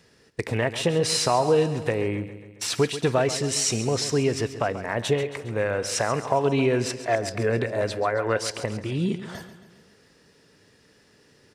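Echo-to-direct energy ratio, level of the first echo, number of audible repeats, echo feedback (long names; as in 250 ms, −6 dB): −11.5 dB, −13.0 dB, 5, 56%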